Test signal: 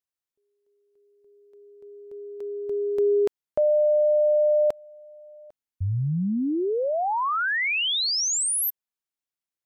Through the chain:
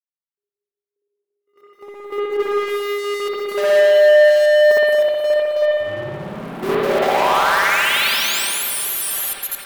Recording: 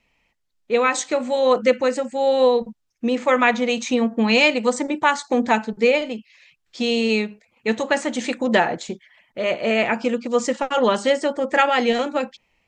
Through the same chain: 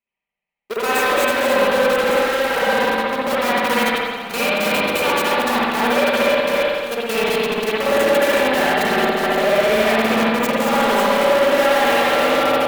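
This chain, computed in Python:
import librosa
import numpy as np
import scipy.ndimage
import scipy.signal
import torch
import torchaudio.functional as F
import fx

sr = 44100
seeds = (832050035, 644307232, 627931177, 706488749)

p1 = fx.reverse_delay_fb(x, sr, ms=157, feedback_pct=65, wet_db=-5.0)
p2 = fx.fuzz(p1, sr, gain_db=41.0, gate_db=-43.0)
p3 = p1 + (p2 * 10.0 ** (-3.5 / 20.0))
p4 = fx.tube_stage(p3, sr, drive_db=18.0, bias=0.55)
p5 = fx.highpass(p4, sr, hz=52.0, slope=6)
p6 = fx.peak_eq(p5, sr, hz=6200.0, db=-12.0, octaves=1.4)
p7 = p6 + 0.58 * np.pad(p6, (int(5.1 * sr / 1000.0), 0))[:len(p6)]
p8 = p7 + fx.echo_single(p7, sr, ms=220, db=-4.0, dry=0)
p9 = fx.leveller(p8, sr, passes=3)
p10 = fx.bass_treble(p9, sr, bass_db=-9, treble_db=5)
p11 = fx.level_steps(p10, sr, step_db=14)
p12 = fx.rev_spring(p11, sr, rt60_s=1.4, pass_ms=(58,), chirp_ms=30, drr_db=-6.5)
y = p12 * 10.0 ** (-9.0 / 20.0)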